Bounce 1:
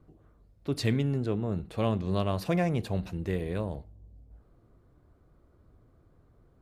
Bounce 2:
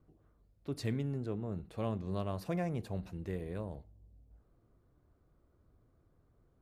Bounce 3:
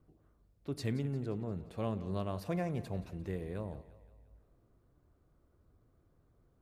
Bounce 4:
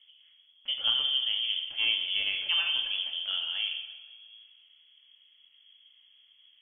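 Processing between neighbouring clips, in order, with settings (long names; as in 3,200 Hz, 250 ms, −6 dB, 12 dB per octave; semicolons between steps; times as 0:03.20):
dynamic equaliser 3,200 Hz, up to −5 dB, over −53 dBFS, Q 1.1; level −8 dB
echo with a time of its own for lows and highs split 440 Hz, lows 93 ms, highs 175 ms, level −16 dB
voice inversion scrambler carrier 3,300 Hz; coupled-rooms reverb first 0.83 s, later 3.3 s, from −24 dB, DRR 2.5 dB; level +5 dB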